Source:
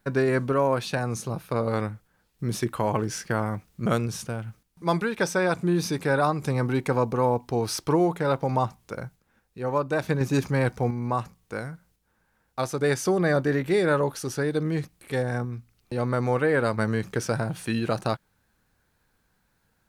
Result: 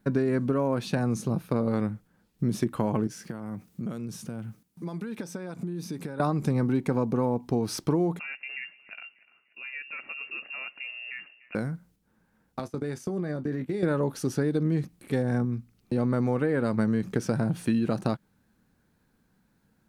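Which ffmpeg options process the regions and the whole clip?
ffmpeg -i in.wav -filter_complex "[0:a]asettb=1/sr,asplit=3[link_01][link_02][link_03];[link_01]atrim=end=3.074[link_04];[link_02]atrim=start=3.07:end=6.2,asetpts=PTS-STARTPTS,afade=type=in:duration=0.004:curve=qsin,afade=type=out:start_time=3.126:duration=0.004:curve=qsin,highshelf=frequency=7100:gain=6,acompressor=threshold=-35dB:ratio=16:attack=3.2:release=140:knee=1:detection=peak,highpass=87[link_05];[link_03]atrim=start=6.196[link_06];[link_04][link_05]acrossfade=duration=0.004:curve1=hsin:curve2=qsin[link_07];[link_07][link_06]acrossfade=duration=0.004:curve1=qsin:curve2=hsin,asettb=1/sr,asplit=3[link_08][link_09][link_10];[link_08]atrim=end=8.194[link_11];[link_09]atrim=start=8.19:end=11.55,asetpts=PTS-STARTPTS,afade=type=in:duration=0.004:curve=qsin,afade=type=out:start_time=3.356:duration=0.004:curve=qsin,acompressor=threshold=-40dB:ratio=2:attack=3.2:release=140:knee=1:detection=peak,lowpass=frequency=2500:width_type=q:width=0.5098,lowpass=frequency=2500:width_type=q:width=0.6013,lowpass=frequency=2500:width_type=q:width=0.9,lowpass=frequency=2500:width_type=q:width=2.563,afreqshift=-2900,aecho=1:1:296|592|888:0.0944|0.0434|0.02,atrim=end_sample=148176[link_12];[link_10]atrim=start=11.546[link_13];[link_11][link_12]acrossfade=duration=0.004:curve1=hsin:curve2=qsin[link_14];[link_14][link_13]acrossfade=duration=0.004:curve1=qsin:curve2=hsin,asettb=1/sr,asplit=3[link_15][link_16][link_17];[link_15]atrim=end=12.594[link_18];[link_16]atrim=start=12.59:end=13.83,asetpts=PTS-STARTPTS,afade=type=in:duration=0.004:curve=qsin,afade=type=out:start_time=1.236:duration=0.004:curve=qsin,agate=range=-21dB:threshold=-32dB:ratio=16:release=100:detection=peak,acompressor=threshold=-31dB:ratio=10:attack=3.2:release=140:knee=1:detection=peak,asplit=2[link_19][link_20];[link_20]adelay=20,volume=-12dB[link_21];[link_19][link_21]amix=inputs=2:normalize=0,atrim=end_sample=54684[link_22];[link_17]atrim=start=13.826[link_23];[link_18][link_22]acrossfade=duration=0.004:curve1=hsin:curve2=qsin[link_24];[link_24][link_23]acrossfade=duration=0.004:curve1=qsin:curve2=hsin,equalizer=frequency=220:width_type=o:width=1.7:gain=12.5,acompressor=threshold=-18dB:ratio=6,volume=-3.5dB" out.wav

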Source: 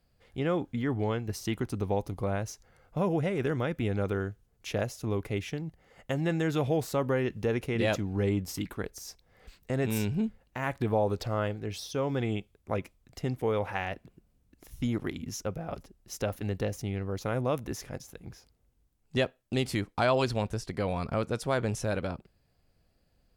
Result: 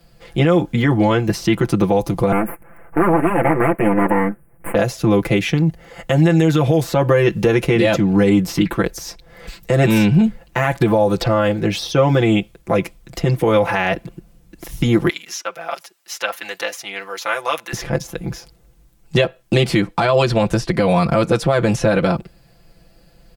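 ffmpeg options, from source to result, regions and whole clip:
ffmpeg -i in.wav -filter_complex "[0:a]asettb=1/sr,asplit=3[link_01][link_02][link_03];[link_01]atrim=end=2.324[link_04];[link_02]atrim=start=2.32:end=4.75,asetpts=PTS-STARTPTS,afade=type=in:duration=0.004:curve=qsin,afade=type=out:start_time=2.426:duration=0.004:curve=qsin,aeval=exprs='abs(val(0))':channel_layout=same,asuperstop=centerf=4700:order=8:qfactor=0.71[link_05];[link_03]atrim=start=4.746[link_06];[link_04][link_05]acrossfade=duration=0.004:curve1=hsin:curve2=qsin[link_07];[link_07][link_06]acrossfade=duration=0.004:curve1=qsin:curve2=hsin,asettb=1/sr,asplit=3[link_08][link_09][link_10];[link_08]atrim=end=15.094[link_11];[link_09]atrim=start=15.09:end=17.73,asetpts=PTS-STARTPTS,afade=type=in:duration=0.004:curve=qsin,afade=type=out:start_time=2.636:duration=0.004:curve=qsin,highpass=1200,aphaser=in_gain=1:out_gain=1:delay=3.5:decay=0.24:speed=1.6:type=sinusoidal[link_12];[link_10]atrim=start=17.726[link_13];[link_11][link_12]acrossfade=duration=0.004:curve1=hsin:curve2=qsin[link_14];[link_14][link_13]acrossfade=duration=0.004:curve1=qsin:curve2=hsin,aecho=1:1:5.9:0.9,acrossover=split=110|4100[link_15][link_16][link_17];[link_15]acompressor=threshold=-46dB:ratio=4[link_18];[link_16]acompressor=threshold=-27dB:ratio=4[link_19];[link_17]acompressor=threshold=-53dB:ratio=4[link_20];[link_18][link_19][link_20]amix=inputs=3:normalize=0,alimiter=level_in=21dB:limit=-1dB:release=50:level=0:latency=1,volume=-4dB" out.wav

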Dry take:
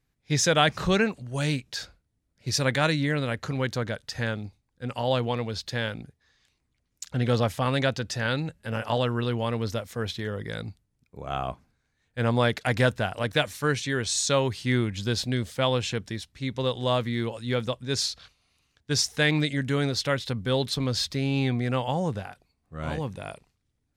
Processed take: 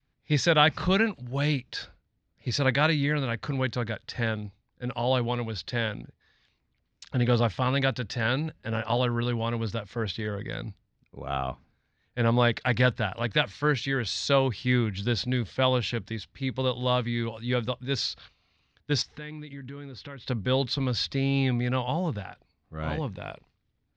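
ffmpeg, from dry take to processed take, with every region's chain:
ffmpeg -i in.wav -filter_complex "[0:a]asettb=1/sr,asplit=3[link_01][link_02][link_03];[link_01]atrim=end=19.024[link_04];[link_02]atrim=start=19.02:end=20.28,asetpts=PTS-STARTPTS,afade=type=in:duration=0.004:curve=qsin,afade=type=out:start_time=1.256:duration=0.004:curve=qsin,lowpass=frequency=2100:poles=1,equalizer=frequency=640:width=2.7:gain=-9,acompressor=threshold=-39dB:ratio=4:attack=3.2:release=140:knee=1:detection=peak[link_05];[link_03]atrim=start=20.276[link_06];[link_04][link_05]acrossfade=duration=0.004:curve1=hsin:curve2=qsin[link_07];[link_07][link_06]acrossfade=duration=0.004:curve1=qsin:curve2=hsin,lowpass=frequency=4700:width=0.5412,lowpass=frequency=4700:width=1.3066,adynamicequalizer=threshold=0.0141:dfrequency=450:dqfactor=0.71:tfrequency=450:tqfactor=0.71:attack=5:release=100:ratio=0.375:range=2.5:mode=cutabove:tftype=bell,volume=1dB" out.wav

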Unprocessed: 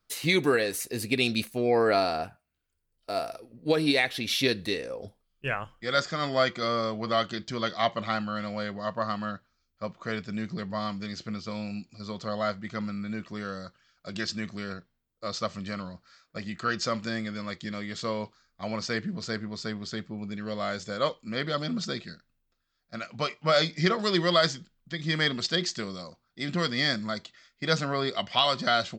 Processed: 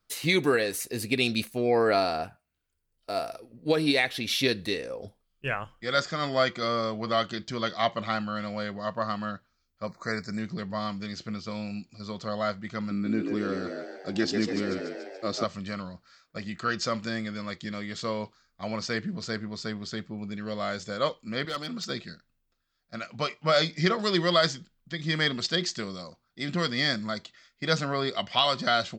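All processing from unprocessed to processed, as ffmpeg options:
ffmpeg -i in.wav -filter_complex "[0:a]asettb=1/sr,asplit=3[link_01][link_02][link_03];[link_01]atrim=end=9.874[link_04];[link_02]atrim=start=9.87:end=10.39,asetpts=PTS-STARTPTS,afade=type=in:duration=0.004:curve=qsin,afade=type=out:start_time=0.516:duration=0.004:curve=qsin,asuperstop=centerf=3000:order=8:qfactor=1.6,highshelf=frequency=2100:gain=9[link_05];[link_03]atrim=start=10.386[link_06];[link_04][link_05]acrossfade=duration=0.004:curve1=hsin:curve2=qsin[link_07];[link_07][link_06]acrossfade=duration=0.004:curve1=qsin:curve2=hsin,asettb=1/sr,asplit=3[link_08][link_09][link_10];[link_08]atrim=end=12.914[link_11];[link_09]atrim=start=12.91:end=15.44,asetpts=PTS-STARTPTS,afade=type=in:duration=0.004:curve=qsin,afade=type=out:start_time=2.526:duration=0.004:curve=qsin,equalizer=frequency=310:width=1.6:gain=13,asplit=9[link_12][link_13][link_14][link_15][link_16][link_17][link_18][link_19][link_20];[link_13]adelay=144,afreqshift=65,volume=-5.5dB[link_21];[link_14]adelay=288,afreqshift=130,volume=-9.9dB[link_22];[link_15]adelay=432,afreqshift=195,volume=-14.4dB[link_23];[link_16]adelay=576,afreqshift=260,volume=-18.8dB[link_24];[link_17]adelay=720,afreqshift=325,volume=-23.2dB[link_25];[link_18]adelay=864,afreqshift=390,volume=-27.7dB[link_26];[link_19]adelay=1008,afreqshift=455,volume=-32.1dB[link_27];[link_20]adelay=1152,afreqshift=520,volume=-36.6dB[link_28];[link_12][link_21][link_22][link_23][link_24][link_25][link_26][link_27][link_28]amix=inputs=9:normalize=0,atrim=end_sample=111573[link_29];[link_10]atrim=start=15.436[link_30];[link_11][link_29]acrossfade=duration=0.004:curve1=hsin:curve2=qsin[link_31];[link_31][link_30]acrossfade=duration=0.004:curve1=qsin:curve2=hsin,asettb=1/sr,asplit=3[link_32][link_33][link_34];[link_32]atrim=end=21.454[link_35];[link_33]atrim=start=21.45:end=21.9,asetpts=PTS-STARTPTS,afade=type=in:duration=0.004:curve=qsin,afade=type=out:start_time=0.446:duration=0.004:curve=qsin,highpass=frequency=370:poles=1,equalizer=frequency=600:width=7.8:gain=-7,volume=25.5dB,asoftclip=hard,volume=-25.5dB[link_36];[link_34]atrim=start=21.896[link_37];[link_35][link_36]acrossfade=duration=0.004:curve1=hsin:curve2=qsin[link_38];[link_38][link_37]acrossfade=duration=0.004:curve1=qsin:curve2=hsin" out.wav

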